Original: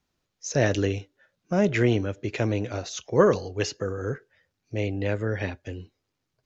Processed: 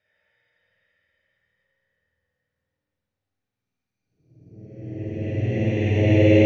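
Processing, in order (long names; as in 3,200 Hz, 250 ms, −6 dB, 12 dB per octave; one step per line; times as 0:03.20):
noise gate −44 dBFS, range −18 dB
extreme stretch with random phases 16×, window 0.25 s, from 0:04.36
on a send: echo with a time of its own for lows and highs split 460 Hz, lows 403 ms, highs 131 ms, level −8 dB
on the sum: spring reverb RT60 1.3 s, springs 50 ms, chirp 45 ms, DRR −5.5 dB
level +5.5 dB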